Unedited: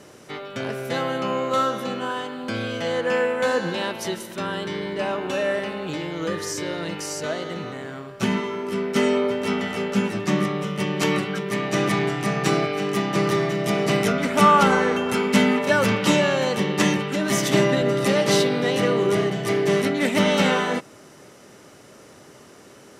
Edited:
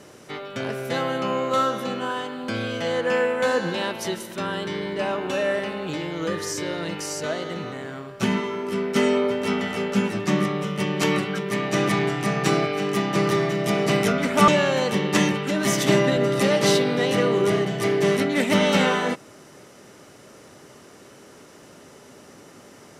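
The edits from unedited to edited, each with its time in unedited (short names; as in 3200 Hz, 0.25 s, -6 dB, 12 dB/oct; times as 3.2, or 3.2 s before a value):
14.48–16.13 cut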